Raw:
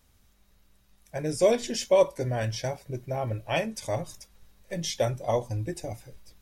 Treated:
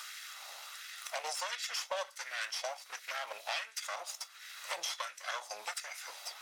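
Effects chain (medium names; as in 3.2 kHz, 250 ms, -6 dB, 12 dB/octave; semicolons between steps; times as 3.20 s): comb filter that takes the minimum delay 1.5 ms; high-pass 360 Hz 12 dB/octave; peaking EQ 4.6 kHz +12 dB 2.8 oct; compression 2:1, threshold -48 dBFS, peak gain reduction 17.5 dB; LFO high-pass sine 1.4 Hz 760–1700 Hz; three bands compressed up and down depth 70%; trim +2 dB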